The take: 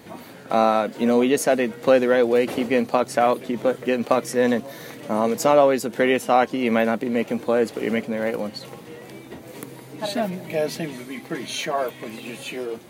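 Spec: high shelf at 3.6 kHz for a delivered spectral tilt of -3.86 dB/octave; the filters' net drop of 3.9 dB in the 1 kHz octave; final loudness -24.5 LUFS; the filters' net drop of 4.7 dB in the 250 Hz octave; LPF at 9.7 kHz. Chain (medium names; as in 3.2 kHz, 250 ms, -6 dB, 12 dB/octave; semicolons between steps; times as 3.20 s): low-pass 9.7 kHz; peaking EQ 250 Hz -5 dB; peaking EQ 1 kHz -5 dB; treble shelf 3.6 kHz -6.5 dB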